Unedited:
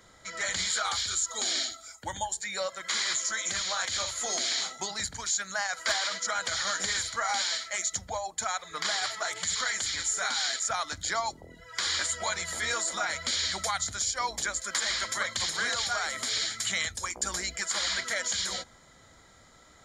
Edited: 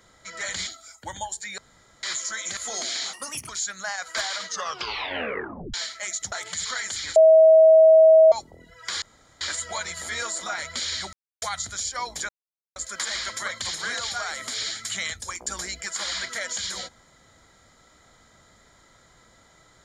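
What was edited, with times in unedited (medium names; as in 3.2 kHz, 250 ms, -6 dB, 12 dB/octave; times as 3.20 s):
0.67–1.67 s: delete
2.58–3.03 s: room tone
3.57–4.13 s: delete
4.69–5.20 s: speed 142%
6.16 s: tape stop 1.29 s
8.03–9.22 s: delete
10.06–11.22 s: bleep 640 Hz -9.5 dBFS
11.92 s: insert room tone 0.39 s
13.64 s: insert silence 0.29 s
14.51 s: insert silence 0.47 s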